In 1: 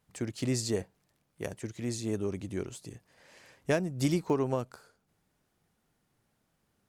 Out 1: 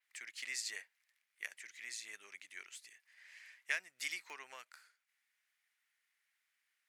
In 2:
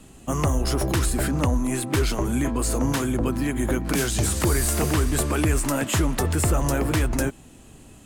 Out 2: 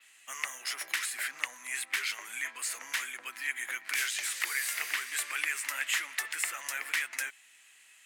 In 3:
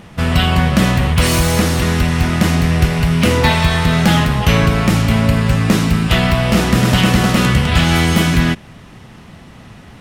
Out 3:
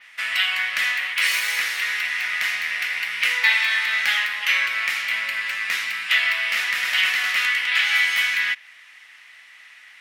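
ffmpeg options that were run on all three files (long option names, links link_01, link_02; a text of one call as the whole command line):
ffmpeg -i in.wav -af "highpass=frequency=2000:width_type=q:width=3.6,adynamicequalizer=threshold=0.0158:dfrequency=8400:dqfactor=1.2:tfrequency=8400:tqfactor=1.2:attack=5:release=100:ratio=0.375:range=3:mode=cutabove:tftype=bell,volume=-6dB" out.wav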